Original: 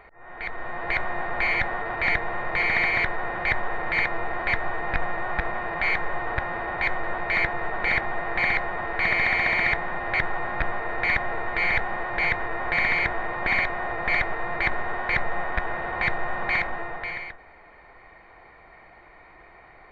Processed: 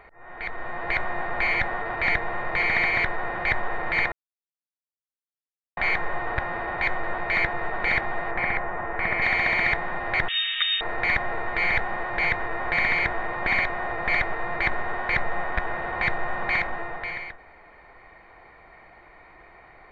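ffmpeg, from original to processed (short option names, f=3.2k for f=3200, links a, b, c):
-filter_complex "[0:a]asettb=1/sr,asplit=3[a][b][c];[a]atrim=end=8.314[d];[b]atrim=start=8.31:end=9.22,asetpts=PTS-STARTPTS,afade=t=in:d=0.004:c=qsin,afade=t=out:st=0.906:d=0.004:c=qsin,lowpass=2k[e];[c]atrim=start=9.216[f];[d][e]acrossfade=d=0.004:c1=hsin:c2=qsin[g];[g][f]acrossfade=d=0.004:c1=qsin:c2=hsin,asettb=1/sr,asplit=3[h][i][j];[h]atrim=end=10.284[k];[i]atrim=start=10.28:end=10.81,asetpts=PTS-STARTPTS,afade=t=in:d=0.004:c=qsin,afade=t=out:st=0.526:d=0.004:c=qsin,lowpass=f=3.1k:t=q:w=0.5098,lowpass=f=3.1k:t=q:w=0.6013,lowpass=f=3.1k:t=q:w=0.9,lowpass=f=3.1k:t=q:w=2.563,afreqshift=-3700[l];[j]atrim=start=10.806[m];[k][l]acrossfade=d=0.004:c1=hsin:c2=qsin[n];[n][m]acrossfade=d=0.004:c1=qsin:c2=hsin,asplit=3[o][p][q];[o]atrim=end=4.12,asetpts=PTS-STARTPTS,afade=t=out:st=4.116:d=0.004:c=hsin[r];[p]atrim=start=4.12:end=5.77,asetpts=PTS-STARTPTS,volume=0[s];[q]atrim=start=5.77,asetpts=PTS-STARTPTS,afade=t=in:d=0.004:c=hsin[t];[r][s][t]concat=n=3:v=0:a=1"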